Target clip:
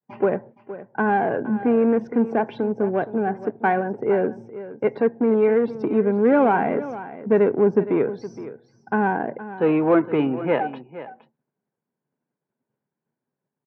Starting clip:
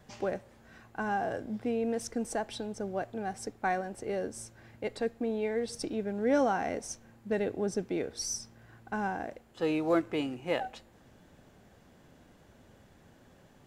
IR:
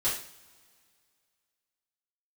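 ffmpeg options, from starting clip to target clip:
-filter_complex "[0:a]agate=range=-33dB:threshold=-46dB:ratio=3:detection=peak,afftdn=nr=20:nf=-54,tiltshelf=f=1.2k:g=4,asplit=2[a][b];[b]volume=29.5dB,asoftclip=hard,volume=-29.5dB,volume=-4dB[c];[a][c]amix=inputs=2:normalize=0,highpass=f=140:w=0.5412,highpass=f=140:w=1.3066,equalizer=f=140:t=q:w=4:g=8,equalizer=f=230:t=q:w=4:g=4,equalizer=f=410:t=q:w=4:g=7,equalizer=f=960:t=q:w=4:g=9,equalizer=f=1.5k:t=q:w=4:g=6,equalizer=f=2.3k:t=q:w=4:g=5,lowpass=f=2.9k:w=0.5412,lowpass=f=2.9k:w=1.3066,aecho=1:1:467:0.188,volume=2.5dB"

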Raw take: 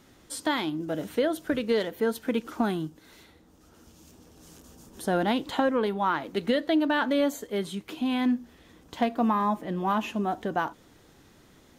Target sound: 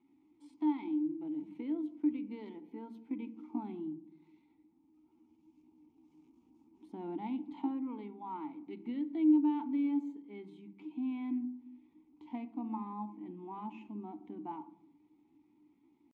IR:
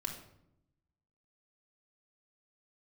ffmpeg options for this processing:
-filter_complex "[0:a]asplit=3[a][b][c];[a]bandpass=f=300:t=q:w=8,volume=0dB[d];[b]bandpass=f=870:t=q:w=8,volume=-6dB[e];[c]bandpass=f=2.24k:t=q:w=8,volume=-9dB[f];[d][e][f]amix=inputs=3:normalize=0,atempo=0.73,asplit=2[g][h];[1:a]atrim=start_sample=2205,lowpass=2.1k,lowshelf=f=370:g=11.5[i];[h][i]afir=irnorm=-1:irlink=0,volume=-9.5dB[j];[g][j]amix=inputs=2:normalize=0,volume=-6.5dB"

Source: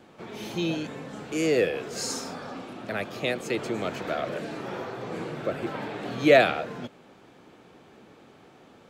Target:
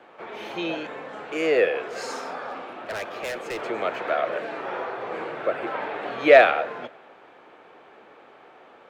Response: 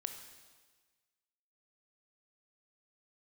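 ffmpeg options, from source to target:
-filter_complex "[0:a]acrossover=split=420 2900:gain=0.1 1 0.126[a][b][c];[a][b][c]amix=inputs=3:normalize=0,acontrast=37,asettb=1/sr,asplit=3[d][e][f];[d]atrim=end=2.504[g];[e]atrim=start=2.5:end=3.61,asetpts=PTS-STARTPTS,afade=t=in:d=0.004:c=qsin,afade=t=out:st=1.106:d=0.004:c=qsin,volume=29.5dB,asoftclip=hard,volume=-29.5dB[h];[f]atrim=start=3.606[i];[g][h]acrossfade=d=0.004:c1=hsin:c2=qsin[j];[j][i]acrossfade=d=0.004:c1=qsin:c2=hsin,asplit=2[k][l];[1:a]atrim=start_sample=2205[m];[l][m]afir=irnorm=-1:irlink=0,volume=-11.5dB[n];[k][n]amix=inputs=2:normalize=0"

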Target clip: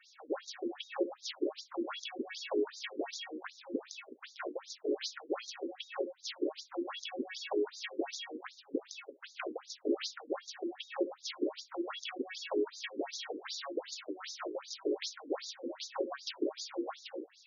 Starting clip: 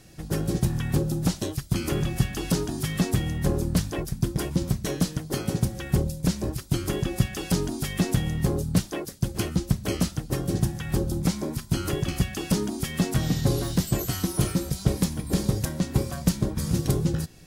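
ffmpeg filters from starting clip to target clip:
-af "lowpass=8.1k,afftfilt=real='re*between(b*sr/1024,360*pow(5100/360,0.5+0.5*sin(2*PI*2.6*pts/sr))/1.41,360*pow(5100/360,0.5+0.5*sin(2*PI*2.6*pts/sr))*1.41)':imag='im*between(b*sr/1024,360*pow(5100/360,0.5+0.5*sin(2*PI*2.6*pts/sr))/1.41,360*pow(5100/360,0.5+0.5*sin(2*PI*2.6*pts/sr))*1.41)':win_size=1024:overlap=0.75,volume=1dB"

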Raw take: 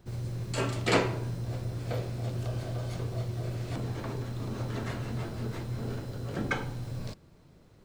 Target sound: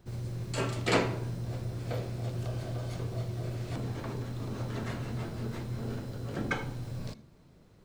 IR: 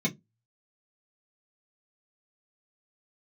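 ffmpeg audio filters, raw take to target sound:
-filter_complex "[0:a]asplit=2[a][b];[1:a]atrim=start_sample=2205,adelay=76[c];[b][c]afir=irnorm=-1:irlink=0,volume=-26.5dB[d];[a][d]amix=inputs=2:normalize=0,volume=-1.5dB"

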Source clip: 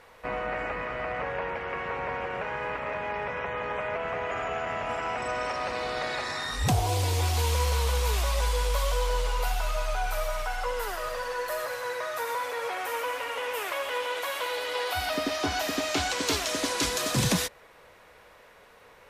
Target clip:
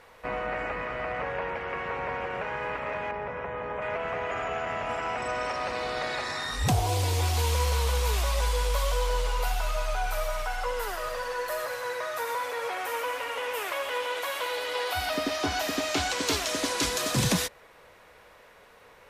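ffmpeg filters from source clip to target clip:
-filter_complex "[0:a]asettb=1/sr,asplit=3[a][b][c];[a]atrim=end=3.114[d];[b]atrim=start=3.11:end=3.82,asetpts=PTS-STARTPTS,afade=t=in:d=0.004:c=qsin,afade=t=out:st=0.706:d=0.004:c=qsin,highshelf=f=2.1k:g=-12[e];[c]atrim=start=3.816[f];[d][e]acrossfade=d=0.004:c1=hsin:c2=qsin[g];[g][f]acrossfade=d=0.004:c1=qsin:c2=hsin"

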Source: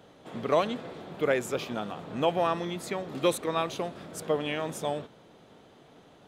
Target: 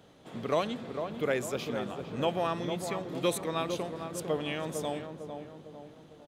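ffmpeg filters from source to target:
-filter_complex "[0:a]equalizer=f=840:w=0.31:g=-4.5,asplit=2[a][b];[b]adelay=452,lowpass=f=1.2k:p=1,volume=-6dB,asplit=2[c][d];[d]adelay=452,lowpass=f=1.2k:p=1,volume=0.51,asplit=2[e][f];[f]adelay=452,lowpass=f=1.2k:p=1,volume=0.51,asplit=2[g][h];[h]adelay=452,lowpass=f=1.2k:p=1,volume=0.51,asplit=2[i][j];[j]adelay=452,lowpass=f=1.2k:p=1,volume=0.51,asplit=2[k][l];[l]adelay=452,lowpass=f=1.2k:p=1,volume=0.51[m];[c][e][g][i][k][m]amix=inputs=6:normalize=0[n];[a][n]amix=inputs=2:normalize=0"

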